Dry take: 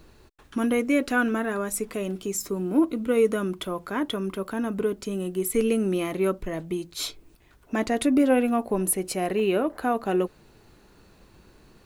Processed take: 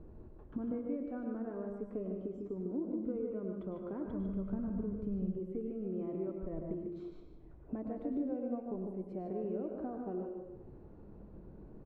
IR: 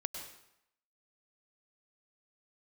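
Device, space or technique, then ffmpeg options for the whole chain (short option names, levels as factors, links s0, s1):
television next door: -filter_complex "[0:a]acompressor=threshold=0.0112:ratio=5,lowpass=550[s0];[1:a]atrim=start_sample=2205[s1];[s0][s1]afir=irnorm=-1:irlink=0,asplit=3[s2][s3][s4];[s2]afade=t=out:st=4.05:d=0.02[s5];[s3]asubboost=boost=10:cutoff=110,afade=t=in:st=4.05:d=0.02,afade=t=out:st=5.36:d=0.02[s6];[s4]afade=t=in:st=5.36:d=0.02[s7];[s5][s6][s7]amix=inputs=3:normalize=0,aecho=1:1:150:0.473,volume=1.26"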